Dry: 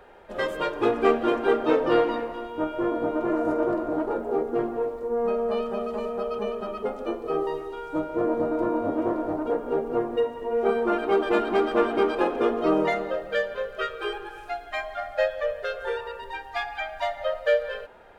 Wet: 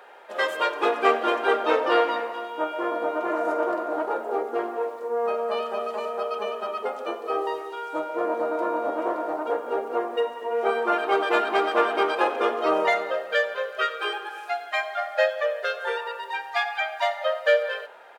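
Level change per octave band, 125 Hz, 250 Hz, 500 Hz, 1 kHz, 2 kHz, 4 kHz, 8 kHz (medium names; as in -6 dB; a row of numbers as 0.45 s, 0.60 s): under -15 dB, -6.5 dB, -0.5 dB, +4.5 dB, +5.5 dB, +5.5 dB, no reading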